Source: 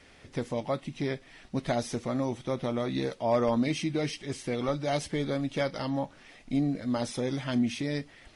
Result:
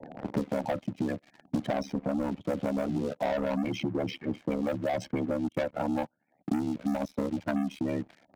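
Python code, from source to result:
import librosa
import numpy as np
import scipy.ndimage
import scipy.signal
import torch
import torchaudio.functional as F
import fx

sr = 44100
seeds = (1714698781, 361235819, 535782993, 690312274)

y = fx.env_lowpass(x, sr, base_hz=840.0, full_db=-23.0)
y = fx.spec_gate(y, sr, threshold_db=-15, keep='strong')
y = scipy.signal.sosfilt(scipy.signal.butter(4, 200.0, 'highpass', fs=sr, output='sos'), y)
y = fx.low_shelf(y, sr, hz=300.0, db=8.0)
y = y + 0.7 * np.pad(y, (int(1.3 * sr / 1000.0), 0))[:len(y)]
y = fx.transient(y, sr, attack_db=4, sustain_db=-11, at=(5.11, 7.87), fade=0.02)
y = fx.leveller(y, sr, passes=3)
y = y * np.sin(2.0 * np.pi * 36.0 * np.arange(len(y)) / sr)
y = fx.band_squash(y, sr, depth_pct=100)
y = y * librosa.db_to_amplitude(-7.5)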